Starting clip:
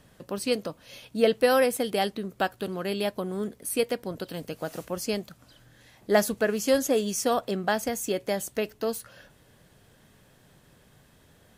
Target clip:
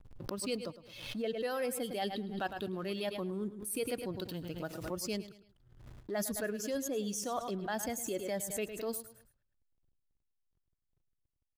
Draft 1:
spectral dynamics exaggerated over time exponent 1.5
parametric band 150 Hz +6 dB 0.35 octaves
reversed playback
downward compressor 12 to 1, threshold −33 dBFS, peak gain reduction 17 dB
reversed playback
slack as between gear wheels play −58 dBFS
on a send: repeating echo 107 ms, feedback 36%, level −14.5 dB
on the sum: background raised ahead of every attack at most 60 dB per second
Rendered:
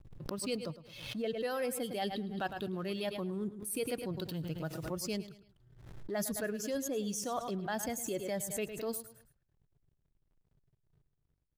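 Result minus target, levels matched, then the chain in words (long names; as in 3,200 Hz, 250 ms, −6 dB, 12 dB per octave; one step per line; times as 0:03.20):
125 Hz band +2.5 dB
spectral dynamics exaggerated over time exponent 1.5
parametric band 150 Hz −4 dB 0.35 octaves
reversed playback
downward compressor 12 to 1, threshold −33 dBFS, peak gain reduction 17 dB
reversed playback
slack as between gear wheels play −58 dBFS
on a send: repeating echo 107 ms, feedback 36%, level −14.5 dB
on the sum: background raised ahead of every attack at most 60 dB per second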